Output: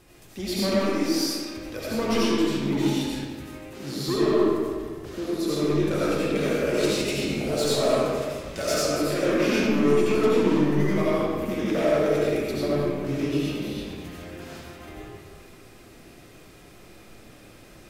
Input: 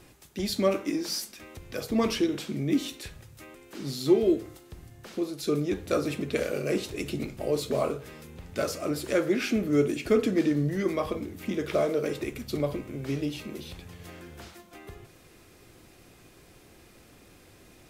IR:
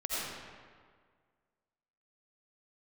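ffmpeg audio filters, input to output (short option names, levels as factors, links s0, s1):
-filter_complex "[0:a]asettb=1/sr,asplit=3[s0][s1][s2];[s0]atrim=end=6.744[s3];[s1]atrim=start=6.74:end=8.88,asetpts=PTS-STARTPTS,afade=t=in:d=0.004:c=qsin,afade=t=out:st=2.136:d=0.004:c=qsin,equalizer=f=6000:t=o:w=2.4:g=8[s4];[s2]atrim=start=8.876[s5];[s3][s4]acrossfade=d=0.004:c1=hsin:c2=qsin[s6];[s6][s5]acrossfade=d=0.004:c1=qsin:c2=hsin,volume=14.1,asoftclip=hard,volume=0.0708[s7];[1:a]atrim=start_sample=2205[s8];[s7][s8]afir=irnorm=-1:irlink=0"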